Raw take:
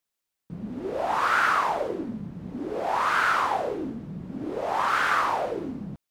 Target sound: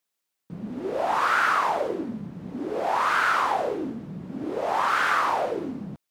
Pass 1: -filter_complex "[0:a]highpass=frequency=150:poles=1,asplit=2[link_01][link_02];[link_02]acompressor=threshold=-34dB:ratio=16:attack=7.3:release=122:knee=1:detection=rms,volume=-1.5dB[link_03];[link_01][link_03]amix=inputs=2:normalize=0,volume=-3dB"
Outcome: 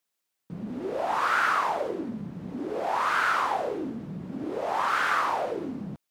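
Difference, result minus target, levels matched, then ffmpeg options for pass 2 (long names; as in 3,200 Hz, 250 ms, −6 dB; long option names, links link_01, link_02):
downward compressor: peak gain reduction +11 dB
-filter_complex "[0:a]highpass=frequency=150:poles=1,asplit=2[link_01][link_02];[link_02]acompressor=threshold=-22.5dB:ratio=16:attack=7.3:release=122:knee=1:detection=rms,volume=-1.5dB[link_03];[link_01][link_03]amix=inputs=2:normalize=0,volume=-3dB"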